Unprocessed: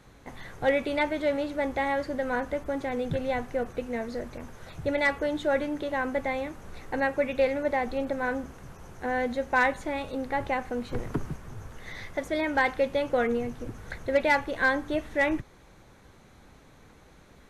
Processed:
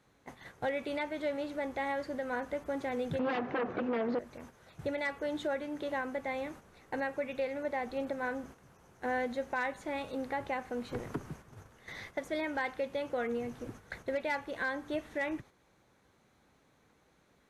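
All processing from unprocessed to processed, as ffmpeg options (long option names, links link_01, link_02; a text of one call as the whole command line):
ffmpeg -i in.wav -filter_complex "[0:a]asettb=1/sr,asplit=3[link_01][link_02][link_03];[link_01]atrim=end=3.194[link_04];[link_02]atrim=start=3.19:end=4.19,asetpts=PTS-STARTPTS,afade=type=in:duration=0.004:curve=qsin,afade=type=out:start_time=0.996:duration=0.004:curve=qsin,aeval=exprs='0.141*sin(PI/2*3.98*val(0)/0.141)':channel_layout=same,highpass=300,lowpass=3400,aemphasis=mode=reproduction:type=riaa[link_05];[link_03]atrim=start=4.186[link_06];[link_04][link_05]acrossfade=duration=0.004:curve1=hsin:curve2=qsin[link_07];[link_07][link_06]acrossfade=duration=0.004:curve1=qsin:curve2=hsin,highpass=frequency=140:poles=1,agate=range=-8dB:threshold=-44dB:ratio=16:detection=peak,alimiter=limit=-21.5dB:level=0:latency=1:release=376,volume=-3.5dB" out.wav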